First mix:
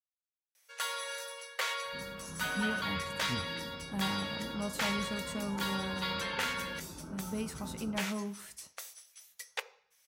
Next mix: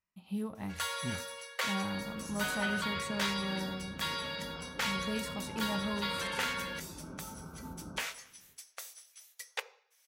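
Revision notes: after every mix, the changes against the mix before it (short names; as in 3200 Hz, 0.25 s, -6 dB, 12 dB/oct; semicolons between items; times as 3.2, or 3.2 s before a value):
speech: entry -2.25 s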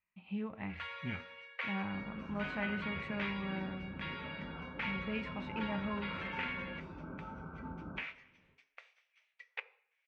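speech +8.0 dB; second sound +10.5 dB; master: add ladder low-pass 2700 Hz, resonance 60%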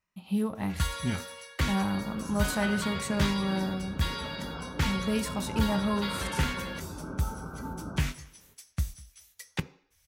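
first sound: remove brick-wall FIR high-pass 410 Hz; second sound: send -7.5 dB; master: remove ladder low-pass 2700 Hz, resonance 60%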